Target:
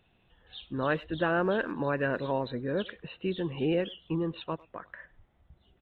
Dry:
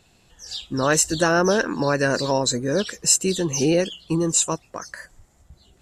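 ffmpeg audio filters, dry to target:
-filter_complex "[0:a]aresample=8000,aresample=44100,asplit=2[s0][s1];[s1]adelay=100,highpass=300,lowpass=3400,asoftclip=type=hard:threshold=0.15,volume=0.0794[s2];[s0][s2]amix=inputs=2:normalize=0,volume=0.376"

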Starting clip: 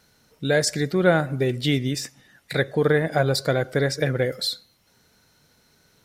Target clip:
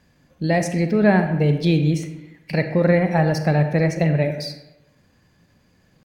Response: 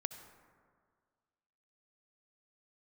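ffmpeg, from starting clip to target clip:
-filter_complex "[0:a]bass=f=250:g=8,treble=f=4000:g=-10,asetrate=50951,aresample=44100,atempo=0.865537[s0];[1:a]atrim=start_sample=2205,asetrate=83790,aresample=44100[s1];[s0][s1]afir=irnorm=-1:irlink=0,volume=2.11"

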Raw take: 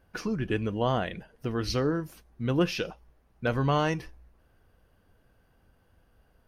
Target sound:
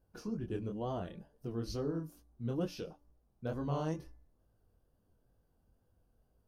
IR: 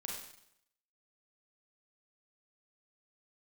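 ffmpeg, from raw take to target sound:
-af "equalizer=f=2100:w=0.82:g=-15,flanger=delay=18:depth=7.7:speed=2.2,bandreject=f=290.4:t=h:w=4,bandreject=f=580.8:t=h:w=4,bandreject=f=871.2:t=h:w=4,bandreject=f=1161.6:t=h:w=4,bandreject=f=1452:t=h:w=4,bandreject=f=1742.4:t=h:w=4,bandreject=f=2032.8:t=h:w=4,volume=0.562"

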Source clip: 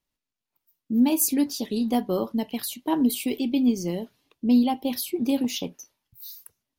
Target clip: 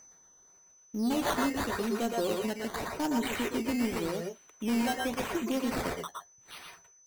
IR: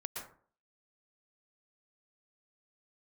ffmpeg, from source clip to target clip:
-filter_complex "[0:a]aeval=exprs='if(lt(val(0),0),0.708*val(0),val(0))':c=same,equalizer=f=460:t=o:w=1.4:g=4,acrossover=split=2600[s0][s1];[s1]acompressor=mode=upward:threshold=0.002:ratio=2.5[s2];[s0][s2]amix=inputs=2:normalize=0,aemphasis=mode=production:type=bsi,aresample=16000,asoftclip=type=tanh:threshold=0.0794,aresample=44100,acrusher=samples=12:mix=1:aa=0.000001:lfo=1:lforange=12:lforate=0.91,aeval=exprs='val(0)+0.00282*sin(2*PI*6300*n/s)':c=same,asetrate=42336,aresample=44100[s3];[1:a]atrim=start_sample=2205,afade=t=out:st=0.18:d=0.01,atrim=end_sample=8379[s4];[s3][s4]afir=irnorm=-1:irlink=0,volume=1.19"

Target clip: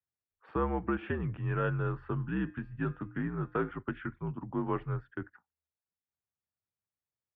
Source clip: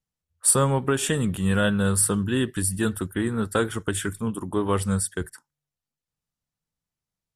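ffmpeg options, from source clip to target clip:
-filter_complex "[0:a]asettb=1/sr,asplit=3[s0][s1][s2];[s0]atrim=end=2.064[s3];[s1]atrim=start=2.06:end=3.71,asetpts=PTS-STARTPTS,afade=t=in:d=0.004:c=qsin,afade=t=out:st=1.646:d=0.004:c=qsin,bandreject=f=185.5:t=h:w=4,bandreject=f=371:t=h:w=4,bandreject=f=556.5:t=h:w=4,bandreject=f=742:t=h:w=4,bandreject=f=927.5:t=h:w=4,bandreject=f=1113:t=h:w=4,bandreject=f=1298.5:t=h:w=4,bandreject=f=1484:t=h:w=4,bandreject=f=1669.5:t=h:w=4,bandreject=f=1855:t=h:w=4,bandreject=f=2040.5:t=h:w=4,bandreject=f=2226:t=h:w=4,bandreject=f=2411.5:t=h:w=4,bandreject=f=2597:t=h:w=4,bandreject=f=2782.5:t=h:w=4,bandreject=f=2968:t=h:w=4,bandreject=f=3153.5:t=h:w=4,bandreject=f=3339:t=h:w=4,bandreject=f=3524.5:t=h:w=4,bandreject=f=3710:t=h:w=4,bandreject=f=3895.5:t=h:w=4,bandreject=f=4081:t=h:w=4,bandreject=f=4266.5:t=h:w=4,bandreject=f=4452:t=h:w=4,bandreject=f=4637.5:t=h:w=4,bandreject=f=4823:t=h:w=4,bandreject=f=5008.5:t=h:w=4,bandreject=f=5194:t=h:w=4,bandreject=f=5379.5:t=h:w=4,bandreject=f=5565:t=h:w=4,bandreject=f=5750.5:t=h:w=4,bandreject=f=5936:t=h:w=4,bandreject=f=6121.5:t=h:w=4,bandreject=f=6307:t=h:w=4,bandreject=f=6492.5:t=h:w=4,bandreject=f=6678:t=h:w=4[s4];[s2]atrim=start=3.706[s5];[s3][s4]acrossfade=d=0.004:c1=hsin:c2=qsin[s6];[s6][s5]acrossfade=d=0.004:c1=qsin:c2=hsin,highpass=f=150:t=q:w=0.5412,highpass=f=150:t=q:w=1.307,lowpass=f=2400:t=q:w=0.5176,lowpass=f=2400:t=q:w=0.7071,lowpass=f=2400:t=q:w=1.932,afreqshift=-66,volume=0.398"

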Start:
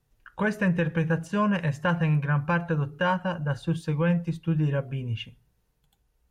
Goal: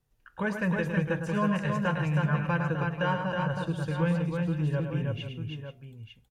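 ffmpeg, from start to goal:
-af "aecho=1:1:106|152|319|484|900:0.422|0.119|0.668|0.2|0.316,volume=0.596"

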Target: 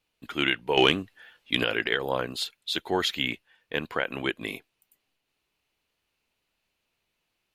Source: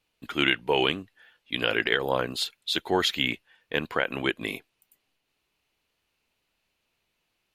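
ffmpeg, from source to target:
-filter_complex "[0:a]asettb=1/sr,asplit=3[s0][s1][s2];[s0]atrim=end=0.774[s3];[s1]atrim=start=0.77:end=1.64,asetpts=PTS-STARTPTS,afade=t=in:d=0.004:c=qsin,afade=t=out:st=0.866:d=0.004:c=qsin,acontrast=81[s4];[s2]atrim=start=1.636[s5];[s3][s4]acrossfade=d=0.004:c1=hsin:c2=qsin[s6];[s6][s5]acrossfade=d=0.004:c1=qsin:c2=hsin,volume=0.794"

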